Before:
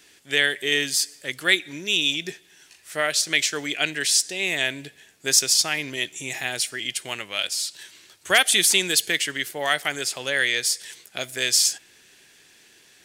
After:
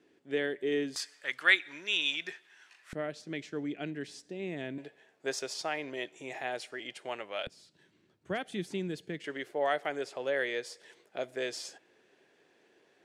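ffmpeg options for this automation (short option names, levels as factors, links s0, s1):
-af "asetnsamples=n=441:p=0,asendcmd='0.96 bandpass f 1300;2.93 bandpass f 220;4.78 bandpass f 610;7.47 bandpass f 180;9.24 bandpass f 500',bandpass=f=330:t=q:w=1.2:csg=0"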